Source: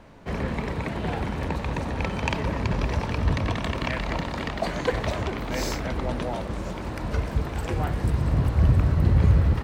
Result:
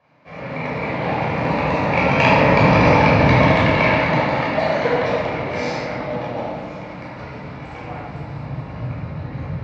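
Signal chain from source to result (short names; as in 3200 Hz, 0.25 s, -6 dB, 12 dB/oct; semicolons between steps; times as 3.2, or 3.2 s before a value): Doppler pass-by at 2.79, 13 m/s, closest 9.1 m; dynamic EQ 520 Hz, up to +4 dB, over -46 dBFS, Q 0.81; AGC gain up to 7.5 dB; speaker cabinet 170–5400 Hz, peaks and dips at 230 Hz -3 dB, 370 Hz -7 dB, 790 Hz +4 dB, 2300 Hz +7 dB, 3200 Hz -4 dB; reverb RT60 1.4 s, pre-delay 13 ms, DRR -7 dB; gain -2.5 dB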